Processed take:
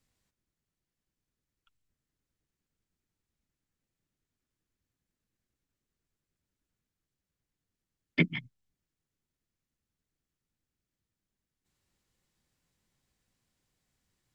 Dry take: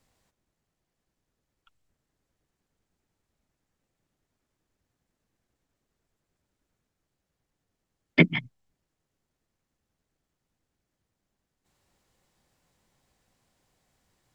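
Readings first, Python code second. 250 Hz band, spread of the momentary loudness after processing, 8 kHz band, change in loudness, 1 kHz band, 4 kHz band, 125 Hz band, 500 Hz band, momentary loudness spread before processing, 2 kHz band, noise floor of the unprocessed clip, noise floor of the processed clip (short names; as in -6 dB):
-7.5 dB, 8 LU, n/a, -7.5 dB, -12.0 dB, -6.5 dB, -6.5 dB, -10.0 dB, 8 LU, -7.0 dB, -83 dBFS, under -85 dBFS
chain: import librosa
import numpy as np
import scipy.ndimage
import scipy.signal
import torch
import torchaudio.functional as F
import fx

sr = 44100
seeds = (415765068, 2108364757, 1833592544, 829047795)

y = fx.peak_eq(x, sr, hz=710.0, db=-8.0, octaves=1.5)
y = y * 10.0 ** (-6.0 / 20.0)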